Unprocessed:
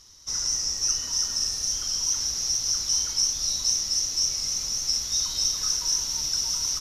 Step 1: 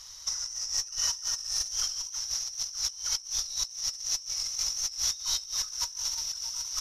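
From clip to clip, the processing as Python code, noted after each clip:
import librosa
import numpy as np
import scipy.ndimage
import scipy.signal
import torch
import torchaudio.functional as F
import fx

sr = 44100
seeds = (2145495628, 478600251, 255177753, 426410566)

y = fx.tone_stack(x, sr, knobs='10-0-10')
y = fx.over_compress(y, sr, threshold_db=-33.0, ratio=-0.5)
y = fx.peak_eq(y, sr, hz=600.0, db=11.5, octaves=3.0)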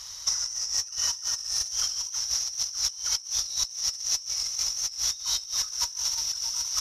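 y = scipy.signal.sosfilt(scipy.signal.butter(2, 41.0, 'highpass', fs=sr, output='sos'), x)
y = fx.rider(y, sr, range_db=10, speed_s=0.5)
y = y * 10.0 ** (3.0 / 20.0)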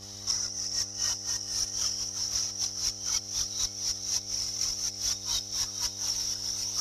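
y = fx.chorus_voices(x, sr, voices=4, hz=0.52, base_ms=22, depth_ms=1.8, mix_pct=65)
y = fx.dmg_buzz(y, sr, base_hz=100.0, harmonics=8, level_db=-50.0, tilt_db=-5, odd_only=False)
y = fx.echo_diffused(y, sr, ms=495, feedback_pct=58, wet_db=-13)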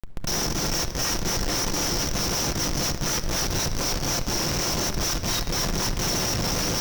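y = scipy.signal.sosfilt(scipy.signal.butter(4, 310.0, 'highpass', fs=sr, output='sos'), x)
y = fx.schmitt(y, sr, flips_db=-32.0)
y = fx.room_shoebox(y, sr, seeds[0], volume_m3=2400.0, walls='mixed', distance_m=0.81)
y = y * 10.0 ** (6.5 / 20.0)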